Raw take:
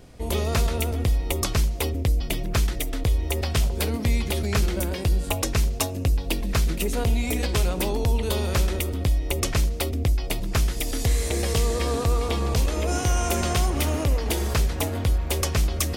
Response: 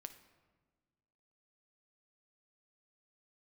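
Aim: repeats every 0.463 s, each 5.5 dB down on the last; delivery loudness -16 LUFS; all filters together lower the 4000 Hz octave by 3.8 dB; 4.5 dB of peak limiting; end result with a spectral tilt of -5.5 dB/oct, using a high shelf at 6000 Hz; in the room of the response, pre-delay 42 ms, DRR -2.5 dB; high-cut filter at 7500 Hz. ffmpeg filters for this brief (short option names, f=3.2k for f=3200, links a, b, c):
-filter_complex "[0:a]lowpass=7.5k,equalizer=f=4k:t=o:g=-6,highshelf=f=6k:g=3.5,alimiter=limit=-17.5dB:level=0:latency=1,aecho=1:1:463|926|1389|1852|2315|2778|3241:0.531|0.281|0.149|0.079|0.0419|0.0222|0.0118,asplit=2[a][b];[1:a]atrim=start_sample=2205,adelay=42[c];[b][c]afir=irnorm=-1:irlink=0,volume=8dB[d];[a][d]amix=inputs=2:normalize=0,volume=4.5dB"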